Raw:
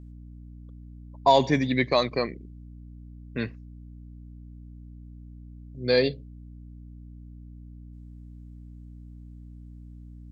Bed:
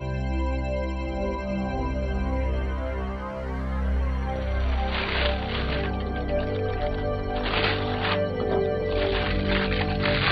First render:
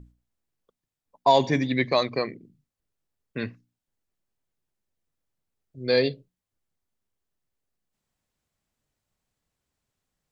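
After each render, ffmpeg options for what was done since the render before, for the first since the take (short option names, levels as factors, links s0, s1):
-af "bandreject=f=60:t=h:w=6,bandreject=f=120:t=h:w=6,bandreject=f=180:t=h:w=6,bandreject=f=240:t=h:w=6,bandreject=f=300:t=h:w=6"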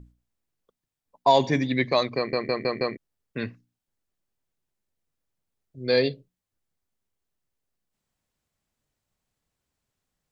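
-filter_complex "[0:a]asplit=6[s0][s1][s2][s3][s4][s5];[s0]atrim=end=2.332[s6];[s1]atrim=start=2.168:end=2.332[s7];[s2]atrim=start=2.168:end=2.332[s8];[s3]atrim=start=2.168:end=2.332[s9];[s4]atrim=start=2.168:end=2.332[s10];[s5]atrim=start=2.968[s11];[s6][s7]acrossfade=d=0.004:c1=hsin:c2=hsin[s12];[s12][s8]acrossfade=d=0.004:c1=hsin:c2=hsin[s13];[s13][s9]acrossfade=d=0.004:c1=hsin:c2=hsin[s14];[s14][s10]acrossfade=d=0.004:c1=hsin:c2=hsin[s15];[s15][s11]acrossfade=d=0.004:c1=hsin:c2=hsin"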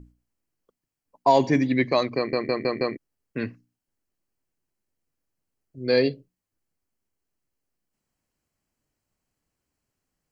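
-af "equalizer=f=300:w=2.1:g=5,bandreject=f=3600:w=5.1"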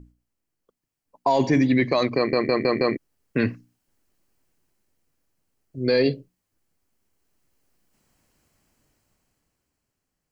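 -af "dynaudnorm=f=120:g=21:m=5.01,alimiter=limit=0.282:level=0:latency=1:release=11"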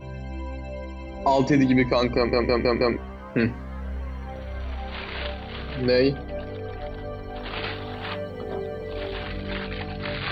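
-filter_complex "[1:a]volume=0.447[s0];[0:a][s0]amix=inputs=2:normalize=0"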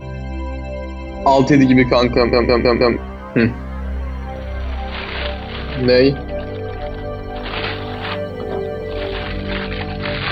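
-af "volume=2.51"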